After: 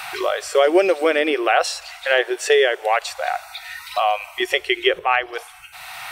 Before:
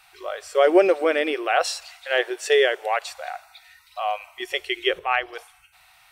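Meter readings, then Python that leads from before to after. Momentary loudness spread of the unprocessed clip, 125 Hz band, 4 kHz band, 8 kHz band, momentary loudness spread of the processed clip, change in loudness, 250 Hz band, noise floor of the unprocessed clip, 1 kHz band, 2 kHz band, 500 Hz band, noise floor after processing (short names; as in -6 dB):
17 LU, n/a, +4.5 dB, +5.0 dB, 16 LU, +3.0 dB, +2.5 dB, -56 dBFS, +4.5 dB, +4.5 dB, +2.5 dB, -42 dBFS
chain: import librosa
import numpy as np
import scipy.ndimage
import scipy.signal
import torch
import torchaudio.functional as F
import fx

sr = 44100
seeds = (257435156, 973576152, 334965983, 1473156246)

y = fx.band_squash(x, sr, depth_pct=70)
y = F.gain(torch.from_numpy(y), 4.0).numpy()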